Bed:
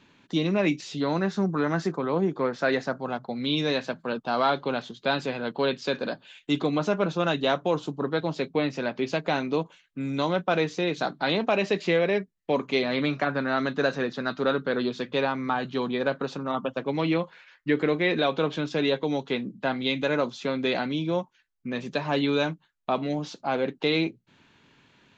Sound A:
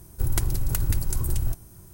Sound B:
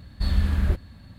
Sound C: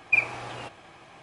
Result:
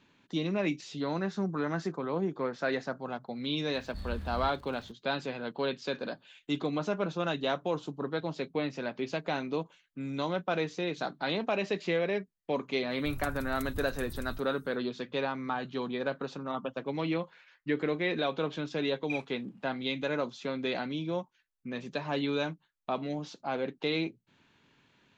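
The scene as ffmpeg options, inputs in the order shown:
ffmpeg -i bed.wav -i cue0.wav -i cue1.wav -i cue2.wav -filter_complex "[0:a]volume=-6.5dB[link_01];[2:a]aeval=exprs='val(0)+0.5*0.0158*sgn(val(0))':channel_layout=same[link_02];[3:a]agate=range=-22dB:threshold=-38dB:ratio=16:release=29:detection=peak[link_03];[link_02]atrim=end=1.18,asetpts=PTS-STARTPTS,volume=-17dB,afade=type=in:duration=0.004:curve=hsin,afade=type=out:start_time=1.176:duration=0.004:curve=hsin,adelay=3740[link_04];[1:a]atrim=end=1.93,asetpts=PTS-STARTPTS,volume=-17dB,afade=type=in:duration=0.1,afade=type=out:start_time=1.83:duration=0.1,adelay=12860[link_05];[link_03]atrim=end=1.22,asetpts=PTS-STARTPTS,volume=-16.5dB,afade=type=in:duration=0.004:curve=hsin,afade=type=out:start_time=1.216:duration=0.004:curve=hsin,adelay=18970[link_06];[link_01][link_04][link_05][link_06]amix=inputs=4:normalize=0" out.wav

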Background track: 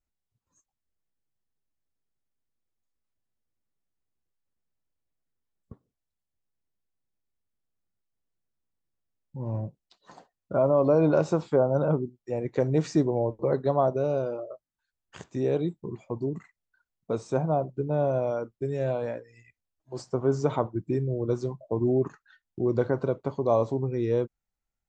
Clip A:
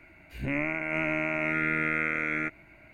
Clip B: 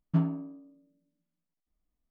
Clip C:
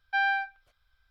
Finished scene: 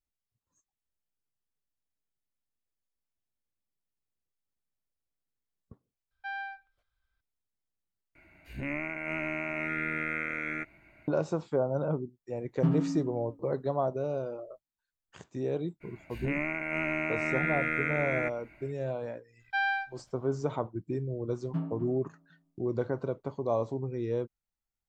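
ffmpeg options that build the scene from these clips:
ffmpeg -i bed.wav -i cue0.wav -i cue1.wav -i cue2.wav -filter_complex "[3:a]asplit=2[link_01][link_02];[1:a]asplit=2[link_03][link_04];[2:a]asplit=2[link_05][link_06];[0:a]volume=-6dB[link_07];[link_01]highshelf=frequency=2600:gain=-5.5[link_08];[link_05]aecho=1:1:83|166|249|332|415|498|581:0.562|0.304|0.164|0.0885|0.0478|0.0258|0.0139[link_09];[link_06]asplit=2[link_10][link_11];[link_11]adelay=253,lowpass=frequency=1700:poles=1,volume=-10.5dB,asplit=2[link_12][link_13];[link_13]adelay=253,lowpass=frequency=1700:poles=1,volume=0.29,asplit=2[link_14][link_15];[link_15]adelay=253,lowpass=frequency=1700:poles=1,volume=0.29[link_16];[link_10][link_12][link_14][link_16]amix=inputs=4:normalize=0[link_17];[link_07]asplit=2[link_18][link_19];[link_18]atrim=end=8.154[link_20];[link_03]atrim=end=2.93,asetpts=PTS-STARTPTS,volume=-5dB[link_21];[link_19]atrim=start=11.076[link_22];[link_08]atrim=end=1.1,asetpts=PTS-STARTPTS,volume=-10.5dB,afade=type=in:duration=0.004:curve=hsin,afade=type=out:start_time=1.096:duration=0.004:curve=hsin,adelay=6110[link_23];[link_09]atrim=end=2.1,asetpts=PTS-STARTPTS,volume=-1dB,afade=type=in:duration=0.004:curve=hsin,afade=type=out:start_time=2.096:duration=0.004:curve=hsin,adelay=12490[link_24];[link_04]atrim=end=2.93,asetpts=PTS-STARTPTS,volume=-2.5dB,afade=type=in:duration=0.02,afade=type=out:start_time=2.91:duration=0.02,adelay=15800[link_25];[link_02]atrim=end=1.1,asetpts=PTS-STARTPTS,volume=-3dB,afade=type=in:duration=0.004:curve=hsin,afade=type=out:start_time=1.096:duration=0.004:curve=hsin,adelay=855540S[link_26];[link_17]atrim=end=2.1,asetpts=PTS-STARTPTS,volume=-7dB,afade=type=in:duration=0.004:curve=hsin,afade=type=out:start_time=2.096:duration=0.004:curve=hsin,adelay=21400[link_27];[link_20][link_21]acrossfade=duration=0.004:curve1=hsin:curve2=hsin[link_28];[link_28][link_22]acrossfade=duration=0.004:curve1=hsin:curve2=hsin[link_29];[link_29][link_23][link_24][link_25][link_26][link_27]amix=inputs=6:normalize=0" out.wav

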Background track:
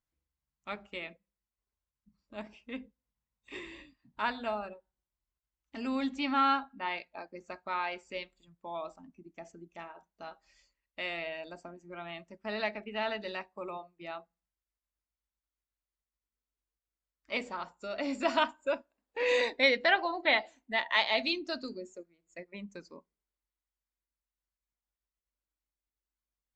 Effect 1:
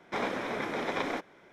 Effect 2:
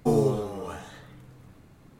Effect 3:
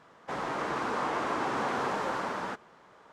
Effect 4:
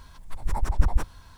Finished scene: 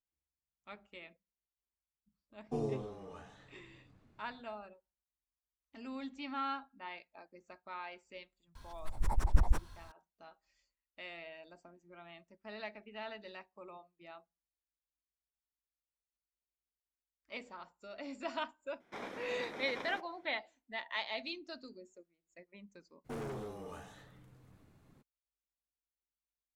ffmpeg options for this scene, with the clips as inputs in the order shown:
ffmpeg -i bed.wav -i cue0.wav -i cue1.wav -i cue2.wav -i cue3.wav -filter_complex "[2:a]asplit=2[link_01][link_02];[0:a]volume=-11dB[link_03];[link_01]lowpass=6100[link_04];[1:a]highshelf=frequency=6800:gain=4.5[link_05];[link_02]asoftclip=type=hard:threshold=-28.5dB[link_06];[link_04]atrim=end=1.99,asetpts=PTS-STARTPTS,volume=-14dB,afade=type=in:duration=0.05,afade=type=out:start_time=1.94:duration=0.05,adelay=2460[link_07];[4:a]atrim=end=1.37,asetpts=PTS-STARTPTS,volume=-6dB,afade=type=in:duration=0.004:curve=hsin,afade=type=out:start_time=1.366:duration=0.004:curve=hsin,adelay=8550[link_08];[link_05]atrim=end=1.52,asetpts=PTS-STARTPTS,volume=-13dB,afade=type=in:duration=0.004:curve=hsin,afade=type=out:start_time=1.516:duration=0.004:curve=hsin,adelay=18800[link_09];[link_06]atrim=end=1.99,asetpts=PTS-STARTPTS,volume=-11dB,afade=type=in:duration=0.02,afade=type=out:start_time=1.97:duration=0.02,adelay=23040[link_10];[link_03][link_07][link_08][link_09][link_10]amix=inputs=5:normalize=0" out.wav

